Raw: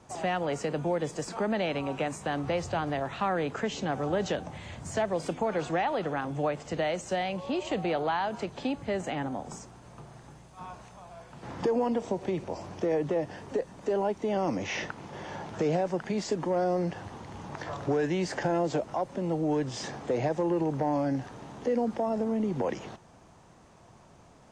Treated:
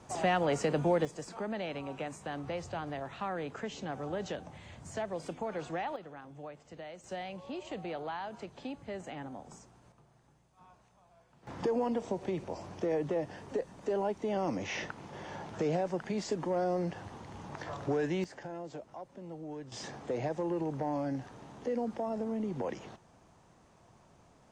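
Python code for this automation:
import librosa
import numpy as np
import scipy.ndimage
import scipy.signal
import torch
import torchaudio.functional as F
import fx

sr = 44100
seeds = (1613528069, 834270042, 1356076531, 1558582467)

y = fx.gain(x, sr, db=fx.steps((0.0, 1.0), (1.05, -8.0), (5.96, -16.5), (7.04, -10.0), (9.92, -16.5), (11.47, -4.0), (18.24, -15.0), (19.72, -6.0)))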